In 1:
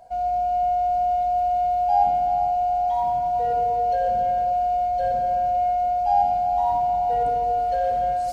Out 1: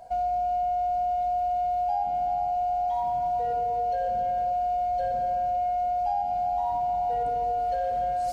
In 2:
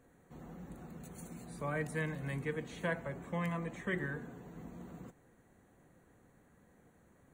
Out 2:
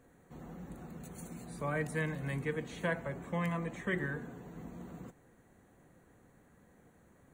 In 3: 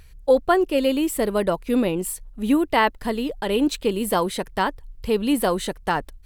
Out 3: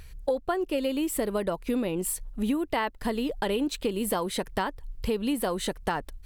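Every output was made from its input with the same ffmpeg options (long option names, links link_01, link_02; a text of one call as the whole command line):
ffmpeg -i in.wav -af "acompressor=threshold=-27dB:ratio=6,volume=2dB" out.wav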